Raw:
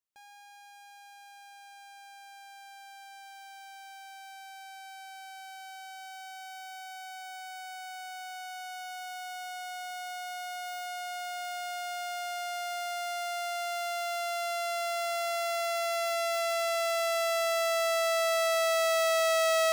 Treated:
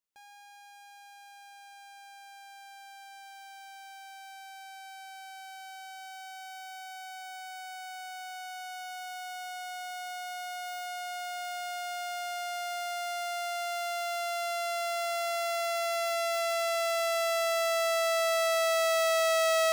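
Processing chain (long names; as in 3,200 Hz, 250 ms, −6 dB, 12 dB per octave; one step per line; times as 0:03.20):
mains-hum notches 60/120/180 Hz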